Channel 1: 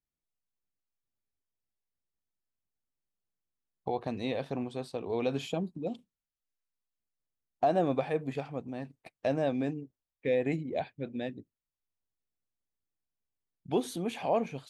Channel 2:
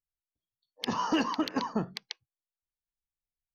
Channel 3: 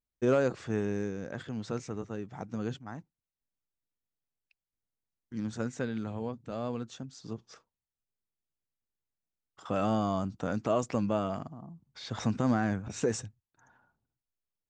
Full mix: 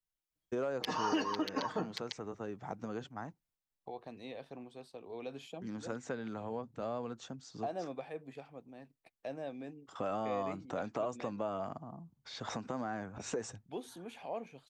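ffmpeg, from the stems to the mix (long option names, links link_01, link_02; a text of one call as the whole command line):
ffmpeg -i stem1.wav -i stem2.wav -i stem3.wav -filter_complex "[0:a]lowshelf=frequency=160:gain=-9.5,acontrast=72,volume=-18dB[link_01];[1:a]aecho=1:1:6.5:0.96,volume=-3.5dB[link_02];[2:a]adynamicequalizer=threshold=0.00562:dfrequency=810:dqfactor=0.71:tfrequency=810:tqfactor=0.71:attack=5:release=100:ratio=0.375:range=3.5:mode=boostabove:tftype=bell,acompressor=threshold=-31dB:ratio=4,adelay=300,volume=-3dB[link_03];[link_01][link_02][link_03]amix=inputs=3:normalize=0,acrossover=split=230|3000[link_04][link_05][link_06];[link_04]acompressor=threshold=-48dB:ratio=6[link_07];[link_07][link_05][link_06]amix=inputs=3:normalize=0,alimiter=limit=-23dB:level=0:latency=1:release=386" out.wav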